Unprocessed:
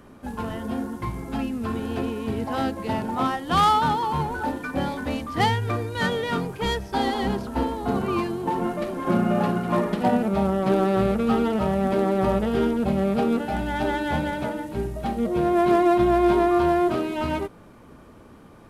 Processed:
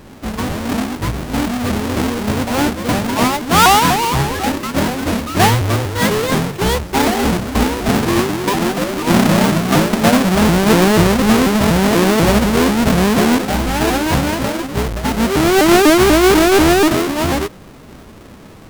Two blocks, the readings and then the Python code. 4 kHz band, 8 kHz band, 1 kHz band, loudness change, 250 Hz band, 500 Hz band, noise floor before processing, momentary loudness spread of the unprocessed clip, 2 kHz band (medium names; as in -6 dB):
+14.5 dB, +23.0 dB, +7.5 dB, +9.5 dB, +9.5 dB, +8.0 dB, -48 dBFS, 10 LU, +13.0 dB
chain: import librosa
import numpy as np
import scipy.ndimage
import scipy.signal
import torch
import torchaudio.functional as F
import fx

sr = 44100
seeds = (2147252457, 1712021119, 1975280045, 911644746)

y = fx.halfwave_hold(x, sr)
y = fx.vibrato_shape(y, sr, shape='saw_up', rate_hz=4.1, depth_cents=250.0)
y = F.gain(torch.from_numpy(y), 5.0).numpy()